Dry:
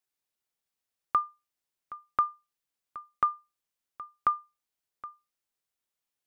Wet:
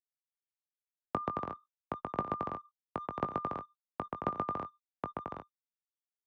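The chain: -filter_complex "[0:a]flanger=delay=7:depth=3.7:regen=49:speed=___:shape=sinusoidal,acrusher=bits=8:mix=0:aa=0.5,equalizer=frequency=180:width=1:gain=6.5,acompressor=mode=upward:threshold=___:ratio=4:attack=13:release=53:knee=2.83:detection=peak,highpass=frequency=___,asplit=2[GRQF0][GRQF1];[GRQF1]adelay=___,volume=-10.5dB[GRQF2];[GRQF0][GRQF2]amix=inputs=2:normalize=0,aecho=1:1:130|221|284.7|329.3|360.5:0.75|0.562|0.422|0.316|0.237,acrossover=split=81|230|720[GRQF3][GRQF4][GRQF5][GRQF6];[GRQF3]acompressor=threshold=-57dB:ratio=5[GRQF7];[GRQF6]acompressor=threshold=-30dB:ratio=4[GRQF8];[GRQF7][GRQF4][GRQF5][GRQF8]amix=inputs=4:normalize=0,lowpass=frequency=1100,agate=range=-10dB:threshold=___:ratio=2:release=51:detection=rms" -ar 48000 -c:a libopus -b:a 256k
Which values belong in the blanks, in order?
0.59, -35dB, 56, 20, -48dB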